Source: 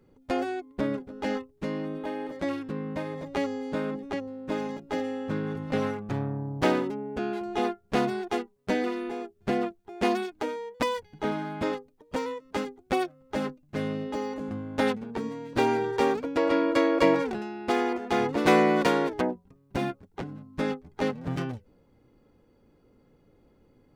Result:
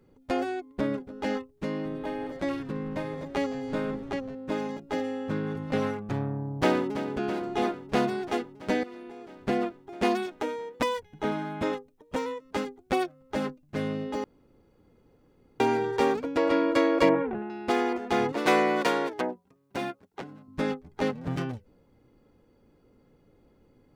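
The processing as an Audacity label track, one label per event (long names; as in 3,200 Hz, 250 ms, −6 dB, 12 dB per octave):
1.680000	4.350000	echo with shifted repeats 166 ms, feedback 62%, per repeat −140 Hz, level −17.5 dB
6.420000	7.070000	delay throw 330 ms, feedback 80%, level −11.5 dB
8.830000	9.360000	downward compressor 12 to 1, threshold −39 dBFS
10.220000	12.460000	notch filter 4,600 Hz, Q 14
14.240000	15.600000	fill with room tone
17.090000	17.500000	Bessel low-pass filter 1,600 Hz, order 8
18.320000	20.480000	high-pass filter 400 Hz 6 dB per octave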